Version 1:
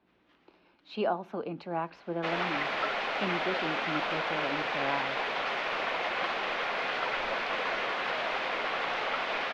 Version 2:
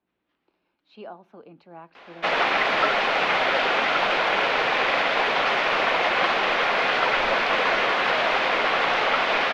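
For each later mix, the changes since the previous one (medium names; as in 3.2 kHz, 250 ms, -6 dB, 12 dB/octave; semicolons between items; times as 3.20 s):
speech -10.5 dB; background +10.0 dB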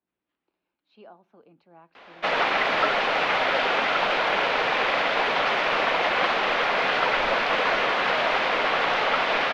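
speech -8.5 dB; background: send off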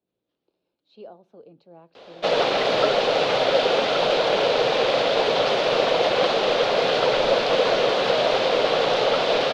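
master: add graphic EQ 125/500/1000/2000/4000/8000 Hz +9/+11/-4/-8/+7/+7 dB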